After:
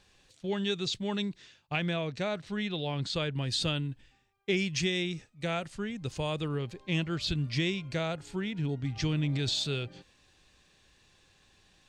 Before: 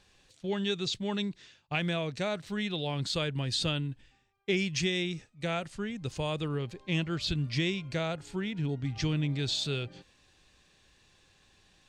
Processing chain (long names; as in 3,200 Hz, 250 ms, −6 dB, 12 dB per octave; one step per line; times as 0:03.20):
0:01.76–0:03.42: high-frequency loss of the air 56 metres
0:09.18–0:09.64: transient designer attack +2 dB, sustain +8 dB